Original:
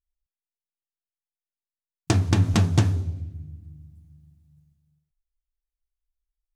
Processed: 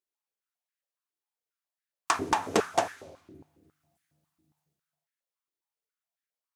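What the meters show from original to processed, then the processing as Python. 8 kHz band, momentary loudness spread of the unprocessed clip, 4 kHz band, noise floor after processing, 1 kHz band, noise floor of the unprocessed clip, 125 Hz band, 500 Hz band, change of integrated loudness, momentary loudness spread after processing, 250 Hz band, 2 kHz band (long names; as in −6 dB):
−1.5 dB, 18 LU, −3.5 dB, below −85 dBFS, +7.0 dB, below −85 dBFS, −27.5 dB, +3.5 dB, −6.0 dB, 4 LU, −10.0 dB, +1.5 dB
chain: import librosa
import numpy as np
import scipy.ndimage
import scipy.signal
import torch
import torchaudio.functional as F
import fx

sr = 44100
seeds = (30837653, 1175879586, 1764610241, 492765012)

y = fx.dynamic_eq(x, sr, hz=4000.0, q=1.2, threshold_db=-48.0, ratio=4.0, max_db=-5)
y = fx.filter_held_highpass(y, sr, hz=7.3, low_hz=350.0, high_hz=1700.0)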